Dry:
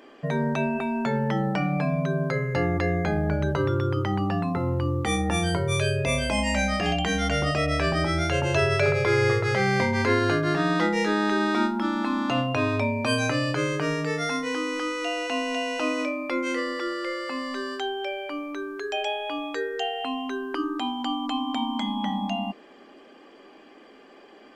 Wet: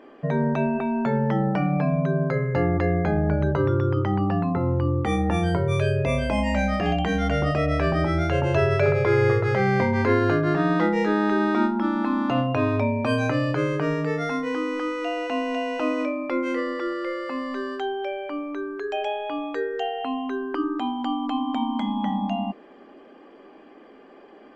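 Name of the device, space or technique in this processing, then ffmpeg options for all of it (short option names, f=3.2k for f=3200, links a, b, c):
through cloth: -af "highshelf=f=3k:g=-17,volume=3dB"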